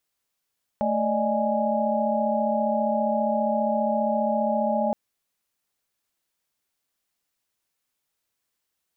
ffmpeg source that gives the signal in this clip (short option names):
-f lavfi -i "aevalsrc='0.0473*(sin(2*PI*220*t)+sin(2*PI*587.33*t)+sin(2*PI*622.25*t)+sin(2*PI*830.61*t))':d=4.12:s=44100"